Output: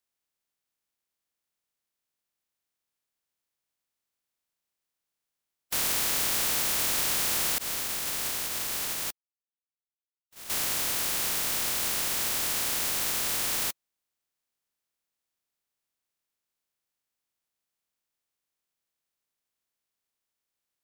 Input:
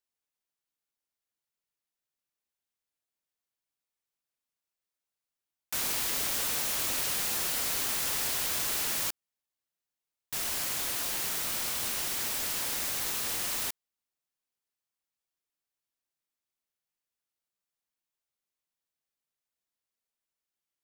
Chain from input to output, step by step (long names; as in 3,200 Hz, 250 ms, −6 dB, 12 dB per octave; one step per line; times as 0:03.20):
compressing power law on the bin magnitudes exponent 0.14
0:07.58–0:10.50: noise gate −30 dBFS, range −27 dB
level +4 dB